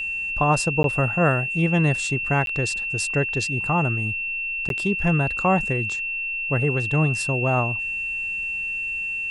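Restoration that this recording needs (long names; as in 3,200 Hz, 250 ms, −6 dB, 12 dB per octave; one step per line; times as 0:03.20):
notch filter 2,700 Hz, Q 30
repair the gap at 0:00.83/0:02.46/0:04.69, 12 ms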